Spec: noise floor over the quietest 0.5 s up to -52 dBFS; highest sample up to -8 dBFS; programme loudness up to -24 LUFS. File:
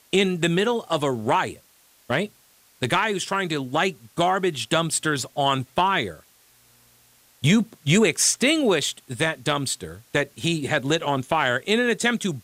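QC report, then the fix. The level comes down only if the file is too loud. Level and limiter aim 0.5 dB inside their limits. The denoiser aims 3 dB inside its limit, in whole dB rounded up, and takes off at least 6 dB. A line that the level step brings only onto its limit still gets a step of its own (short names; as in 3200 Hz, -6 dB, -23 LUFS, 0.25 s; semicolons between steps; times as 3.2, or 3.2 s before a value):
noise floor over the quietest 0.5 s -57 dBFS: OK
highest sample -6.0 dBFS: fail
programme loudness -23.0 LUFS: fail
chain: gain -1.5 dB; limiter -8.5 dBFS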